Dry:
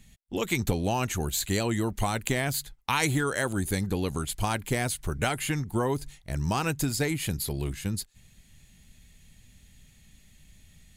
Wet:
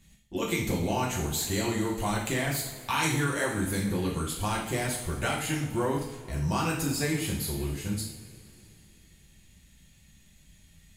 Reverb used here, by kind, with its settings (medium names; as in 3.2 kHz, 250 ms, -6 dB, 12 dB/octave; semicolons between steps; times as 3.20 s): two-slope reverb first 0.6 s, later 3.3 s, from -18 dB, DRR -4 dB; trim -6 dB